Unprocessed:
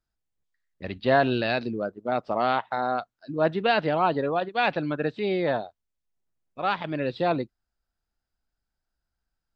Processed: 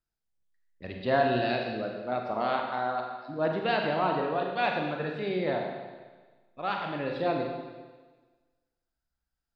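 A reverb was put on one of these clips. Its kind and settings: Schroeder reverb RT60 1.4 s, combs from 33 ms, DRR 1.5 dB; trim -6 dB

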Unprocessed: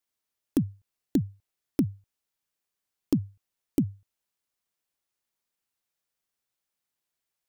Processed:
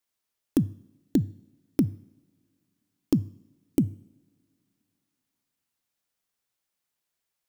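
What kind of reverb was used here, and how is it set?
two-slope reverb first 0.73 s, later 2.9 s, from -21 dB, DRR 19 dB; trim +2 dB

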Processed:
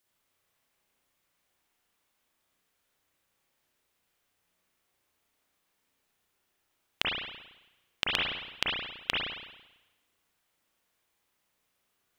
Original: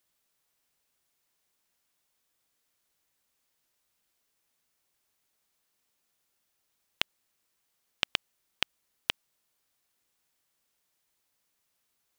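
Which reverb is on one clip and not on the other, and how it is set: spring tank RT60 1 s, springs 33/55 ms, chirp 55 ms, DRR -5 dB; trim -1.5 dB

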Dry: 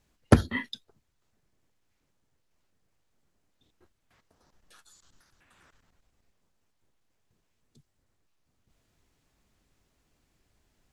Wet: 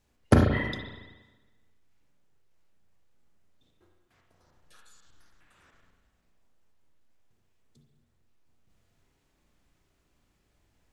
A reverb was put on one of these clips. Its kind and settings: spring tank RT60 1.2 s, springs 34/46 ms, chirp 35 ms, DRR 0.5 dB; trim -2 dB

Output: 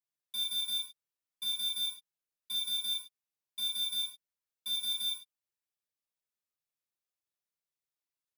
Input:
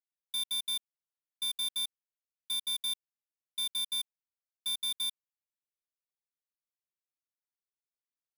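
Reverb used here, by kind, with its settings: gated-style reverb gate 160 ms falling, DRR -4.5 dB; trim -6 dB

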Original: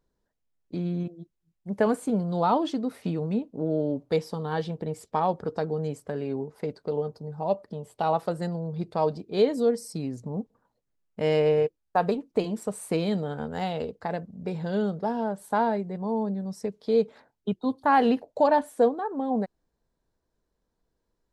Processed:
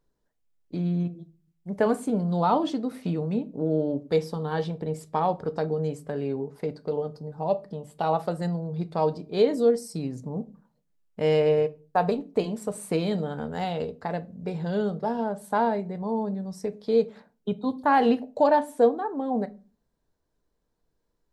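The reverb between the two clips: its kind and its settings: simulated room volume 170 m³, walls furnished, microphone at 0.38 m

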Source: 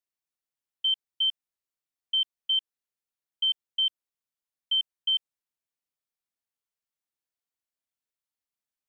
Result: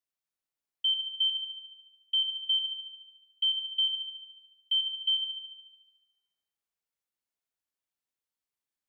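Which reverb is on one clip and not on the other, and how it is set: spring tank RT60 1.2 s, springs 55 ms, chirp 75 ms, DRR 4.5 dB; trim -1.5 dB

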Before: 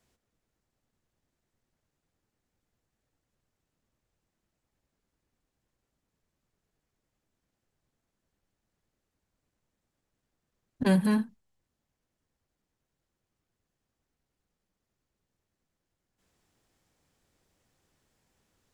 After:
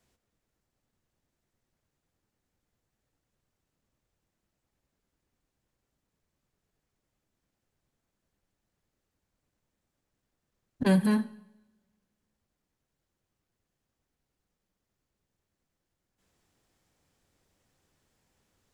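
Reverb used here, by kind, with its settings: two-slope reverb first 0.86 s, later 2.3 s, from -24 dB, DRR 16.5 dB

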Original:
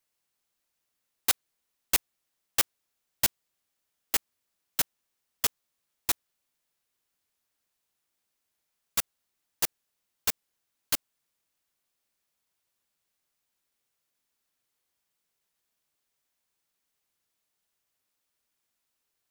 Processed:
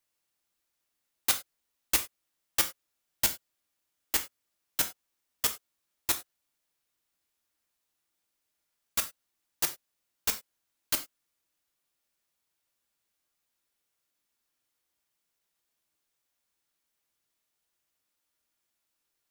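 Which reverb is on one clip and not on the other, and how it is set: gated-style reverb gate 120 ms falling, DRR 6 dB; trim -1.5 dB

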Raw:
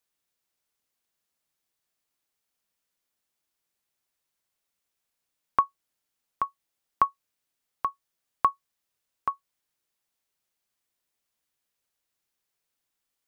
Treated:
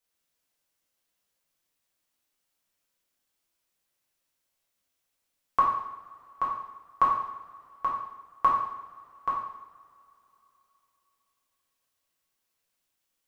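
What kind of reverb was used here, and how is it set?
two-slope reverb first 0.81 s, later 3.4 s, from -21 dB, DRR -5.5 dB; trim -4 dB

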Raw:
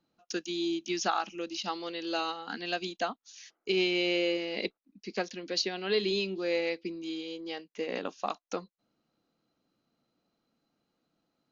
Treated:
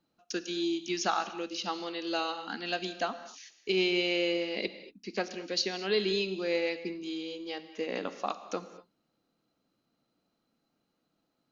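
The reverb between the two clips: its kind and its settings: gated-style reverb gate 260 ms flat, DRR 11.5 dB

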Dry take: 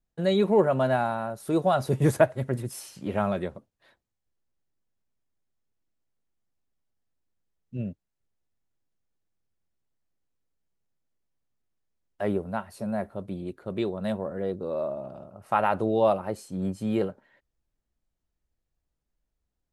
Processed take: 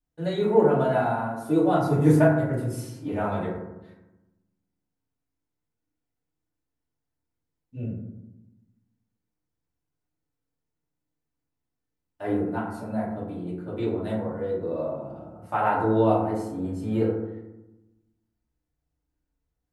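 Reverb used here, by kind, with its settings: FDN reverb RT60 0.97 s, low-frequency decay 1.45×, high-frequency decay 0.35×, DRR -8 dB; trim -8.5 dB

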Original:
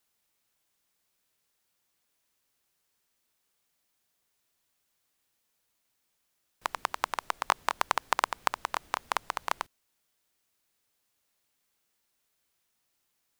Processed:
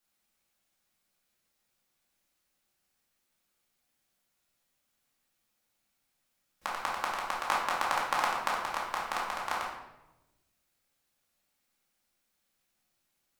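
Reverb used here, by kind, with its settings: simulated room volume 390 m³, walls mixed, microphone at 2.3 m; trim -6.5 dB

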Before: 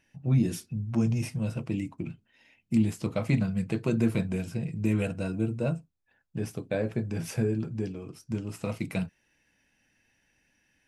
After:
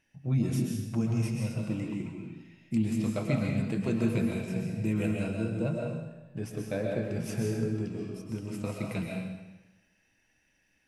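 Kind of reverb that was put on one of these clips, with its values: algorithmic reverb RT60 1.1 s, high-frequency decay 0.95×, pre-delay 90 ms, DRR -0.5 dB; trim -4 dB

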